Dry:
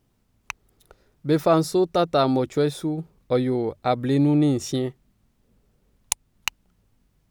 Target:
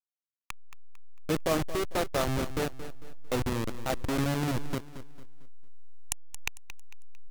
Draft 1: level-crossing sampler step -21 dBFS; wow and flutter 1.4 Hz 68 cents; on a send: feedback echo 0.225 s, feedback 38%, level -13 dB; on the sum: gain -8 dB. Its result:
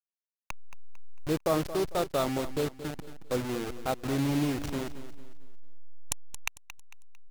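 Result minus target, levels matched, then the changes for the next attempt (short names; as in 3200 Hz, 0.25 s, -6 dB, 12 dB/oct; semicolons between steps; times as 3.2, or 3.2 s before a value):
level-crossing sampler: distortion -7 dB
change: level-crossing sampler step -14.5 dBFS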